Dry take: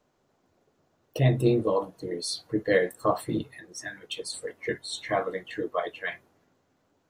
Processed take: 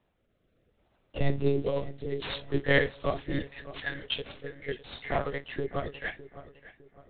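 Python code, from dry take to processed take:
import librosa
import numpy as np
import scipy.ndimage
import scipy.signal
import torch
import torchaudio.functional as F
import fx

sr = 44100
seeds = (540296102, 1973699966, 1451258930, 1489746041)

y = fx.cvsd(x, sr, bps=32000)
y = fx.high_shelf(y, sr, hz=2200.0, db=9.5, at=(1.61, 4.25))
y = fx.lpc_monotone(y, sr, seeds[0], pitch_hz=140.0, order=10)
y = fx.rotary_switch(y, sr, hz=0.7, then_hz=7.0, switch_at_s=5.61)
y = fx.echo_filtered(y, sr, ms=607, feedback_pct=39, hz=2900.0, wet_db=-15.5)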